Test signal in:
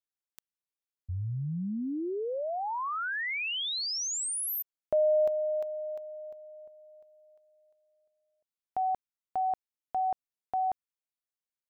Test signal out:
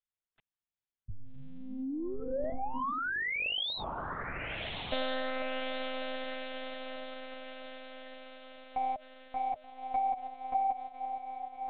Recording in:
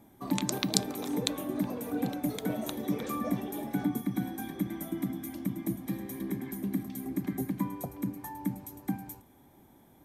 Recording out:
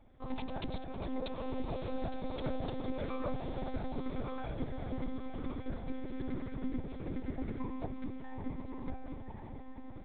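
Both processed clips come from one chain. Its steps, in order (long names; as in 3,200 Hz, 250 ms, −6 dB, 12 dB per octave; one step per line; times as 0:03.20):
dynamic equaliser 660 Hz, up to +7 dB, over −43 dBFS, Q 1.3
downward compressor 2.5 to 1, threshold −30 dBFS
soft clipping −22.5 dBFS
on a send: feedback delay with all-pass diffusion 1,187 ms, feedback 47%, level −4.5 dB
on the sum: one-pitch LPC vocoder at 8 kHz 260 Hz
level −2 dB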